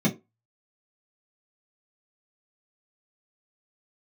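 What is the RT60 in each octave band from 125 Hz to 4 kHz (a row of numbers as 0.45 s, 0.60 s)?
0.20 s, 0.25 s, 0.25 s, 0.20 s, 0.20 s, 0.15 s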